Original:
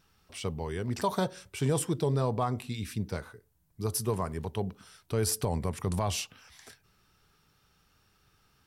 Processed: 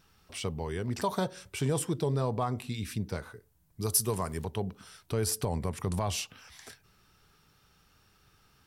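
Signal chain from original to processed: 3.82–4.44 high shelf 3400 Hz +10 dB; in parallel at +0.5 dB: compressor, threshold -37 dBFS, peak gain reduction 16.5 dB; on the sum: gain -3.5 dB

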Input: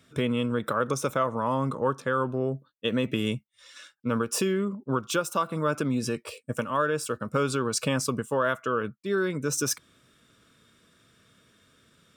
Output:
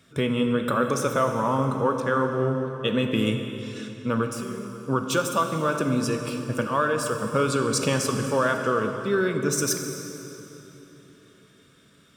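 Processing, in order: 4.28–4.85 compressor, threshold -40 dBFS, peak gain reduction 16.5 dB; reverb RT60 3.4 s, pre-delay 3 ms, DRR 4.5 dB; gain +2 dB

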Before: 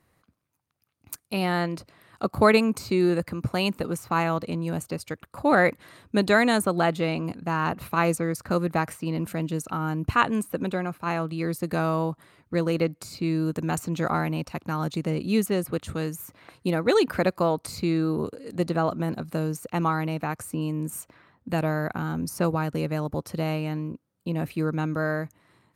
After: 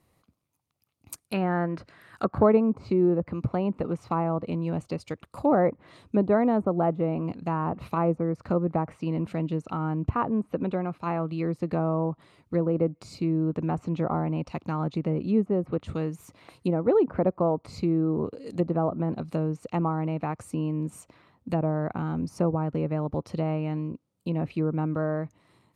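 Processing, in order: dynamic EQ 4000 Hz, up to -5 dB, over -45 dBFS, Q 1; treble ducked by the level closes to 1000 Hz, closed at -21 dBFS; bell 1600 Hz -9.5 dB 0.51 oct, from 1.28 s +7.5 dB, from 2.43 s -8 dB

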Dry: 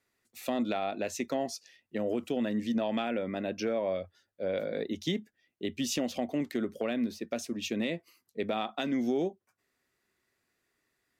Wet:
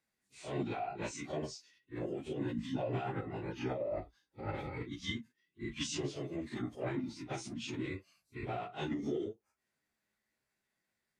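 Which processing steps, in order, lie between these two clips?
phase scrambler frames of 0.1 s; formant-preserving pitch shift -10 st; gain -5.5 dB

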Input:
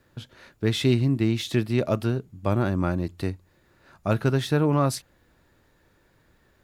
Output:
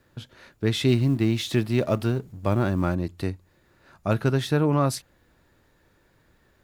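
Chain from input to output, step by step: 0.88–2.95 G.711 law mismatch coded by mu

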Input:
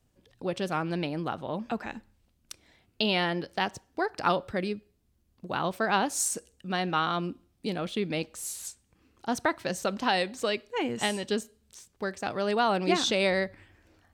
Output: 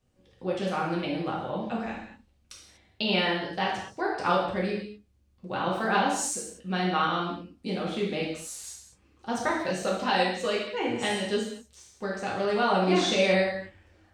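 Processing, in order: bell 14000 Hz -11 dB 0.85 oct; non-linear reverb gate 0.27 s falling, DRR -5 dB; gain -4.5 dB

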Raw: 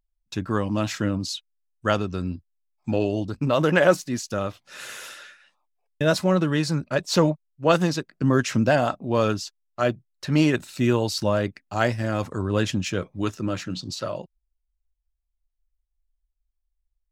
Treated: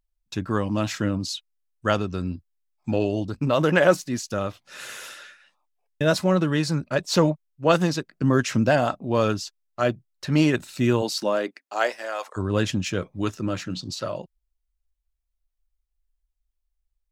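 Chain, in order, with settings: 11.01–12.36 HPF 180 Hz -> 660 Hz 24 dB/oct

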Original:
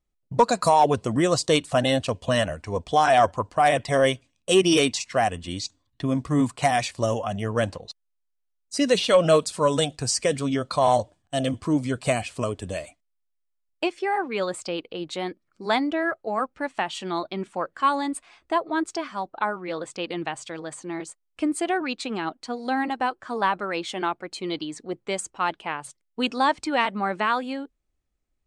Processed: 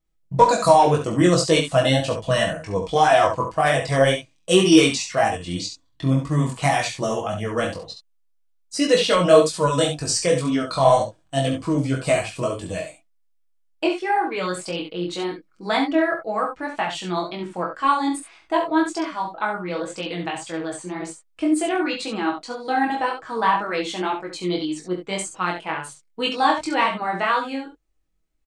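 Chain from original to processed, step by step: comb 6.2 ms, depth 50%; chorus 1.9 Hz, delay 18.5 ms, depth 4.4 ms; early reflections 22 ms -6.5 dB, 68 ms -7 dB; gain +3.5 dB

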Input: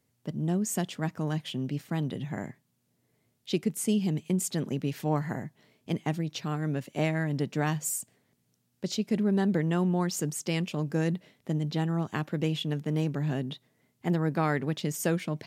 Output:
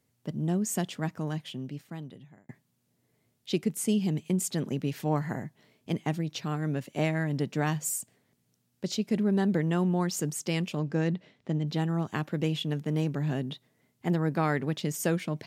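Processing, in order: 0.94–2.49 fade out; 10.79–11.68 LPF 5200 Hz 12 dB/oct

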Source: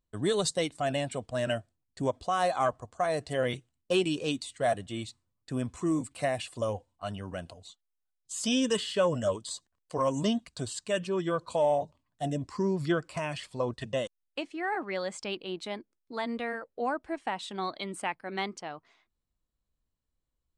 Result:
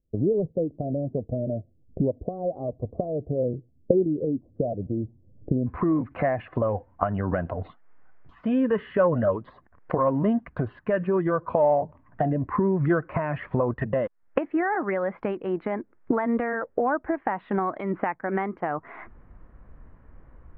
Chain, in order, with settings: recorder AGC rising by 65 dB/s; steep low-pass 560 Hz 36 dB/oct, from 5.66 s 1900 Hz; gain +5 dB

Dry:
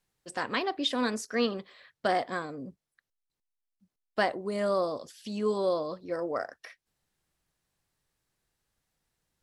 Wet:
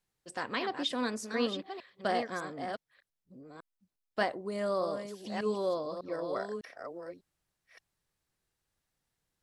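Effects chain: reverse delay 0.601 s, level -7 dB; gain -4 dB

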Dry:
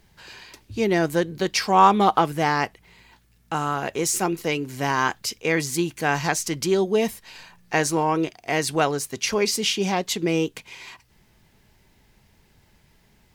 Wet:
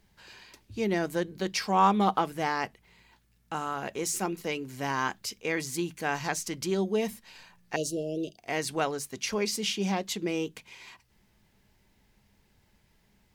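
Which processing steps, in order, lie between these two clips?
7.76–8.38 Chebyshev band-stop 640–2800 Hz, order 5; on a send: reverb RT60 0.15 s, pre-delay 3 ms, DRR 23 dB; on the sum: gain -7.5 dB

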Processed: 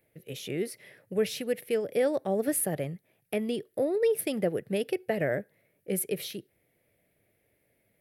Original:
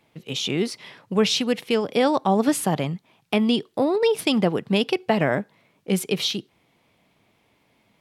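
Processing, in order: EQ curve 100 Hz 0 dB, 240 Hz -8 dB, 350 Hz -2 dB, 570 Hz +2 dB, 1000 Hz -19 dB, 1800 Hz 0 dB, 3200 Hz -12 dB, 7100 Hz -8 dB, 11000 Hz +9 dB; gain -5 dB

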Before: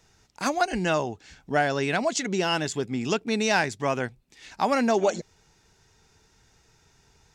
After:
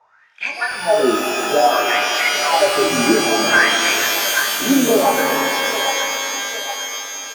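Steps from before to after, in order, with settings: high shelf 2600 Hz -3 dB; wah 0.59 Hz 290–2400 Hz, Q 17; harmoniser -7 st -13 dB, +5 st -17 dB; LFO notch saw up 1.4 Hz 230–3300 Hz; chorus 0.85 Hz, delay 19 ms, depth 6.2 ms; band-limited delay 0.813 s, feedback 49%, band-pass 940 Hz, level -12 dB; maximiser +34.5 dB; shimmer reverb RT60 3.6 s, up +12 st, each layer -2 dB, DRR 3 dB; gain -6 dB

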